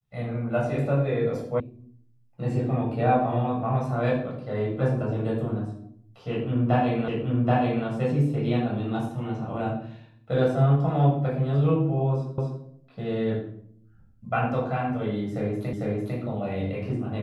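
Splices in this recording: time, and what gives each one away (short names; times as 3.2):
1.6 sound cut off
7.08 repeat of the last 0.78 s
12.38 repeat of the last 0.25 s
15.73 repeat of the last 0.45 s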